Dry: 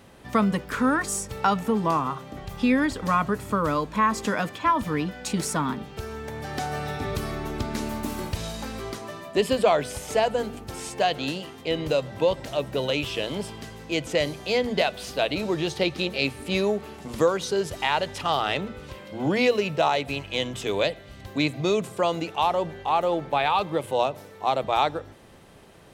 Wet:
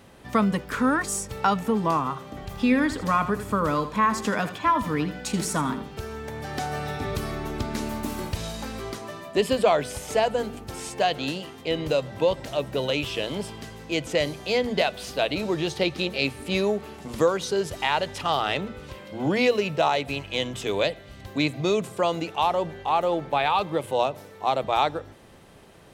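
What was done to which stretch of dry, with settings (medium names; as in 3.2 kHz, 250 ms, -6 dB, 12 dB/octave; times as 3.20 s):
2.13–6.07 s: feedback delay 81 ms, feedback 28%, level -12 dB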